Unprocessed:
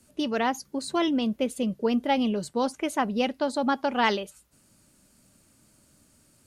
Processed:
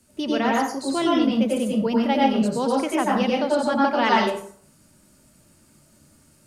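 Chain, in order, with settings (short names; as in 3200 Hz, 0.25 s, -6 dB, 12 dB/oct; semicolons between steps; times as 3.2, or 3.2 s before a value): plate-style reverb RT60 0.55 s, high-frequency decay 0.6×, pre-delay 80 ms, DRR -3.5 dB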